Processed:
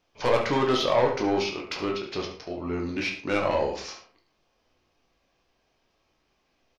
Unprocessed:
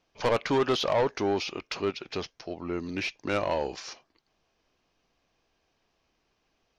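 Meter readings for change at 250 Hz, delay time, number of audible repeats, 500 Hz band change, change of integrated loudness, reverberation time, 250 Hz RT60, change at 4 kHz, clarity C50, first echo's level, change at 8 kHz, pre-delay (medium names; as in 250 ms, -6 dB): +3.5 dB, 70 ms, 1, +2.5 dB, +3.0 dB, 0.45 s, 0.45 s, +2.0 dB, 6.5 dB, -10.0 dB, no reading, 13 ms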